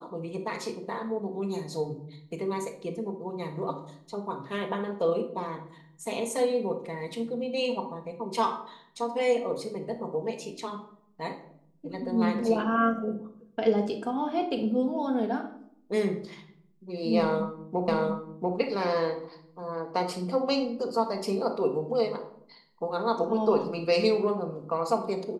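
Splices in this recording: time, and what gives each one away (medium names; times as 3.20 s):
17.88 s: repeat of the last 0.69 s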